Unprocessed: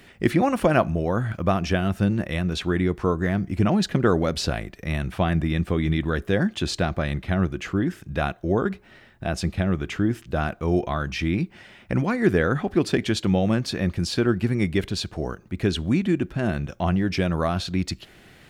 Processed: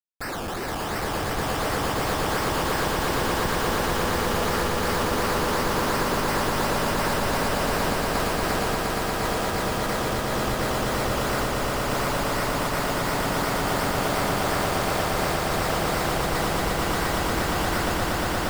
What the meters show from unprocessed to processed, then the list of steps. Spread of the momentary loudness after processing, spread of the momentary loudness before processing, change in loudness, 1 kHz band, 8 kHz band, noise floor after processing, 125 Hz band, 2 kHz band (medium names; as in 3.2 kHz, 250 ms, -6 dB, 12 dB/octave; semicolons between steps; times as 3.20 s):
2 LU, 7 LU, -0.5 dB, +6.5 dB, +9.0 dB, -28 dBFS, -5.5 dB, +4.0 dB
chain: spectrum inverted on a logarithmic axis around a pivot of 1.8 kHz; tone controls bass -14 dB, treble -4 dB; Schmitt trigger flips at -39.5 dBFS; decimation with a swept rate 18×, swing 60% 2.8 Hz; on a send: echo with a slow build-up 117 ms, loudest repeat 8, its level -5.5 dB; on the sum: trim +3 dB